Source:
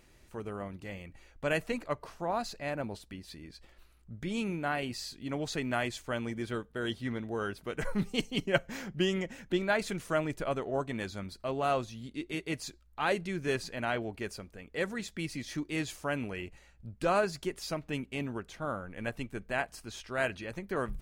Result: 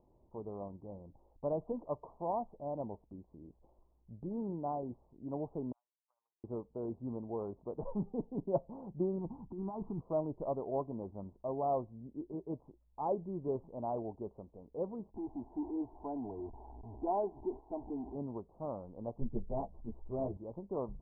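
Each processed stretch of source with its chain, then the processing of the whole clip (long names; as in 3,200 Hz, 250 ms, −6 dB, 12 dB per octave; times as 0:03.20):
0:05.72–0:06.44: four-pole ladder high-pass 2,000 Hz, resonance 50% + output level in coarse steps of 19 dB
0:09.18–0:10.01: comb filter 0.9 ms, depth 89% + compressor whose output falls as the input rises −34 dBFS
0:15.14–0:18.15: converter with a step at zero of −34.5 dBFS + phaser with its sweep stopped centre 800 Hz, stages 8
0:19.20–0:20.37: spectral tilt −4 dB per octave + string-ensemble chorus
whole clip: Butterworth low-pass 1,000 Hz 72 dB per octave; spectral tilt +1.5 dB per octave; level −1.5 dB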